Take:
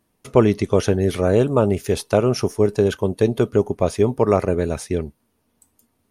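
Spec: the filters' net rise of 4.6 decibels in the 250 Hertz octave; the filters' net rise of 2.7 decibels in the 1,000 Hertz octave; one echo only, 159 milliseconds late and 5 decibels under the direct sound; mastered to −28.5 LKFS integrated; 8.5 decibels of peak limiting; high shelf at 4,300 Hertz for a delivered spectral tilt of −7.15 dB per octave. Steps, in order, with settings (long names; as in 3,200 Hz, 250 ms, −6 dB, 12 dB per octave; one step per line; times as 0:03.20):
parametric band 250 Hz +6 dB
parametric band 1,000 Hz +3.5 dB
high-shelf EQ 4,300 Hz −6 dB
brickwall limiter −6.5 dBFS
single-tap delay 159 ms −5 dB
level −9.5 dB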